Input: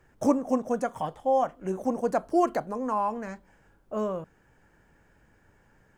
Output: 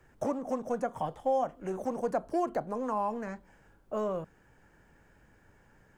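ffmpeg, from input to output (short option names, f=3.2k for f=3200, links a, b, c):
-filter_complex "[0:a]acrossover=split=830|2200[a][b][c];[a]acompressor=threshold=-26dB:ratio=4[d];[b]acompressor=threshold=-40dB:ratio=4[e];[c]acompressor=threshold=-57dB:ratio=4[f];[d][e][f]amix=inputs=3:normalize=0,acrossover=split=340[g][h];[g]asoftclip=type=hard:threshold=-39.5dB[i];[i][h]amix=inputs=2:normalize=0"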